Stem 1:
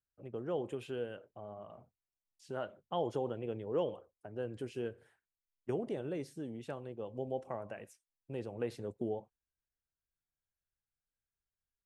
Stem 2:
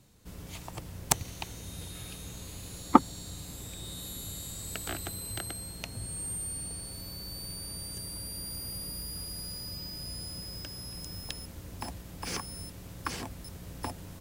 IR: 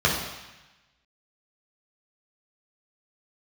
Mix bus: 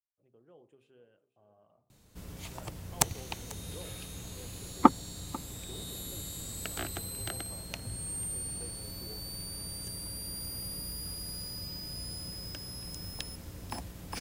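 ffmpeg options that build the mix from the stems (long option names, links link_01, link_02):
-filter_complex "[0:a]bandreject=frequency=66.34:width_type=h:width=4,bandreject=frequency=132.68:width_type=h:width=4,bandreject=frequency=199.02:width_type=h:width=4,bandreject=frequency=265.36:width_type=h:width=4,bandreject=frequency=331.7:width_type=h:width=4,bandreject=frequency=398.04:width_type=h:width=4,bandreject=frequency=464.38:width_type=h:width=4,bandreject=frequency=530.72:width_type=h:width=4,bandreject=frequency=597.06:width_type=h:width=4,bandreject=frequency=663.4:width_type=h:width=4,bandreject=frequency=729.74:width_type=h:width=4,bandreject=frequency=796.08:width_type=h:width=4,bandreject=frequency=862.42:width_type=h:width=4,bandreject=frequency=928.76:width_type=h:width=4,bandreject=frequency=995.1:width_type=h:width=4,bandreject=frequency=1061.44:width_type=h:width=4,bandreject=frequency=1127.78:width_type=h:width=4,bandreject=frequency=1194.12:width_type=h:width=4,bandreject=frequency=1260.46:width_type=h:width=4,volume=-14dB,afade=type=in:start_time=1.17:duration=0.72:silence=0.421697,asplit=2[link_01][link_02];[link_02]volume=-18.5dB[link_03];[1:a]adelay=1900,volume=-0.5dB,asplit=2[link_04][link_05];[link_05]volume=-20.5dB[link_06];[link_03][link_06]amix=inputs=2:normalize=0,aecho=0:1:493:1[link_07];[link_01][link_04][link_07]amix=inputs=3:normalize=0"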